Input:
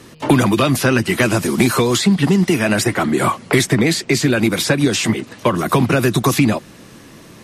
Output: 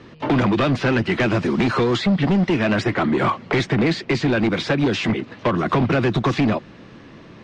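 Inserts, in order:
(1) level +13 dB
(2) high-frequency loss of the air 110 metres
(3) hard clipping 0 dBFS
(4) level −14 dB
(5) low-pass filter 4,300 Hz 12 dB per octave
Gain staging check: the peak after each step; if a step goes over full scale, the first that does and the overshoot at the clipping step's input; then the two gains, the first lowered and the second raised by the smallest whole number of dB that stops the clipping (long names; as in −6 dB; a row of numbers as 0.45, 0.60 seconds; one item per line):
+10.5, +10.0, 0.0, −14.0, −13.5 dBFS
step 1, 10.0 dB
step 1 +3 dB, step 4 −4 dB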